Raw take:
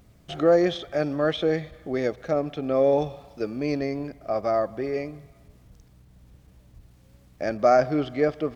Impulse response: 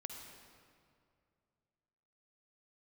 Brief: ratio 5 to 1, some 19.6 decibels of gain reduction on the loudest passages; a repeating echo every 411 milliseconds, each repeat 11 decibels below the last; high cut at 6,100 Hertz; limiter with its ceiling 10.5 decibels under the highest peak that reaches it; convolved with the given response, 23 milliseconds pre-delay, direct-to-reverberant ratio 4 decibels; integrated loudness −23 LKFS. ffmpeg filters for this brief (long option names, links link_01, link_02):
-filter_complex "[0:a]lowpass=6100,acompressor=threshold=-37dB:ratio=5,alimiter=level_in=10dB:limit=-24dB:level=0:latency=1,volume=-10dB,aecho=1:1:411|822|1233:0.282|0.0789|0.0221,asplit=2[link_01][link_02];[1:a]atrim=start_sample=2205,adelay=23[link_03];[link_02][link_03]afir=irnorm=-1:irlink=0,volume=-1dB[link_04];[link_01][link_04]amix=inputs=2:normalize=0,volume=19.5dB"